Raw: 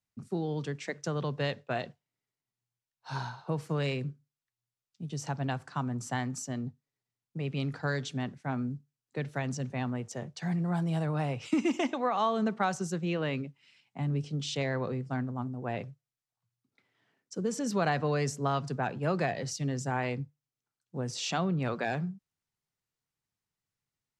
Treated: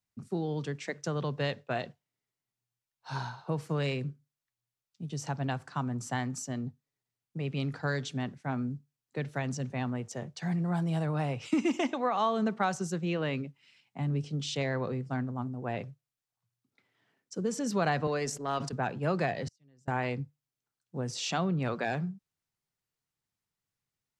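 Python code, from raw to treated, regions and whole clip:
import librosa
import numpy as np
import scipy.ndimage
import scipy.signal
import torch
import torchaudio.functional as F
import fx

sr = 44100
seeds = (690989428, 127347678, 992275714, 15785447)

y = fx.chain(x, sr, fx.highpass(hz=220.0, slope=12),
    fx.transient(attack_db=-8, sustain_db=-12),
    fx.sustainer(db_per_s=74.0), at=(18.07, 18.73))
y = fx.chain(y, sr, fx.gate_flip(shuts_db=-30.0, range_db=-34),
    fx.band_squash(depth_pct=70), at=(19.47, 19.88))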